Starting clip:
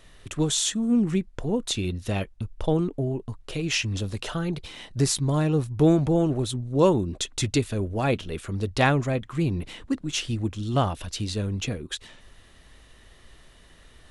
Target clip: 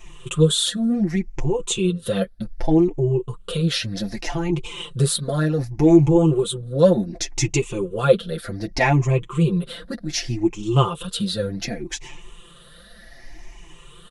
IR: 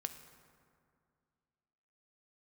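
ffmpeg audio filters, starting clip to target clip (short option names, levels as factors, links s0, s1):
-filter_complex "[0:a]afftfilt=real='re*pow(10,14/40*sin(2*PI*(0.7*log(max(b,1)*sr/1024/100)/log(2)-(0.66)*(pts-256)/sr)))':imag='im*pow(10,14/40*sin(2*PI*(0.7*log(max(b,1)*sr/1024/100)/log(2)-(0.66)*(pts-256)/sr)))':win_size=1024:overlap=0.75,adynamicequalizer=threshold=0.0126:dfrequency=450:dqfactor=3.1:tfrequency=450:tqfactor=3.1:attack=5:release=100:ratio=0.375:range=3.5:mode=boostabove:tftype=bell,flanger=delay=4.1:depth=4.1:regen=9:speed=1.7:shape=triangular,asplit=2[s0][s1];[s1]acompressor=threshold=0.0178:ratio=6,volume=1[s2];[s0][s2]amix=inputs=2:normalize=0,aecho=1:1:5.8:0.82"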